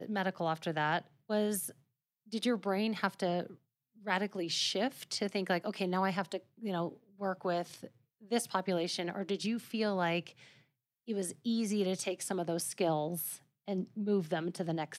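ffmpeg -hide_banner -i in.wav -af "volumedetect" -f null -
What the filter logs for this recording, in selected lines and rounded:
mean_volume: -35.4 dB
max_volume: -15.6 dB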